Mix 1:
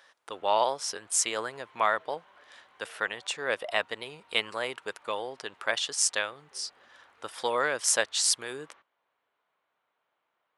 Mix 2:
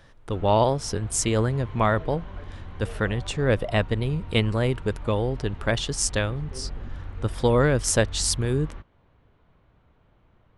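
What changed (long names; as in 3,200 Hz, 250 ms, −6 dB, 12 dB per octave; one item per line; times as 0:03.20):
background +8.5 dB
master: remove high-pass filter 790 Hz 12 dB per octave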